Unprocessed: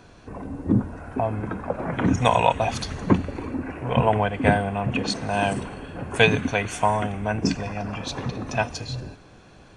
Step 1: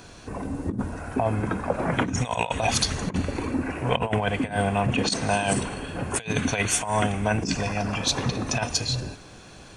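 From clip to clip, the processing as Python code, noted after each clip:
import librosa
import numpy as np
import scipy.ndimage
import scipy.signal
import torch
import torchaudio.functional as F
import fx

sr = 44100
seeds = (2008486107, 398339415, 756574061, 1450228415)

y = fx.high_shelf(x, sr, hz=3900.0, db=12.0)
y = fx.over_compress(y, sr, threshold_db=-23.0, ratio=-0.5)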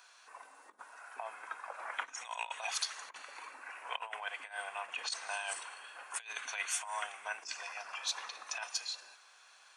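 y = fx.ladder_highpass(x, sr, hz=830.0, resonance_pct=25)
y = y * librosa.db_to_amplitude(-5.5)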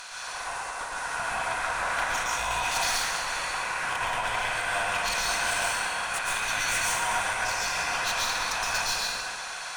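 y = fx.bin_compress(x, sr, power=0.6)
y = fx.tube_stage(y, sr, drive_db=34.0, bias=0.45)
y = fx.rev_plate(y, sr, seeds[0], rt60_s=1.6, hf_ratio=0.45, predelay_ms=105, drr_db=-5.5)
y = y * librosa.db_to_amplitude(6.5)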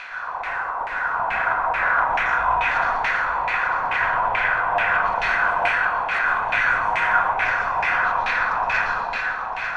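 y = fx.filter_lfo_lowpass(x, sr, shape='saw_down', hz=2.3, low_hz=830.0, high_hz=2400.0, q=3.0)
y = y + 10.0 ** (-7.5 / 20.0) * np.pad(y, (int(896 * sr / 1000.0), 0))[:len(y)]
y = y * librosa.db_to_amplitude(3.0)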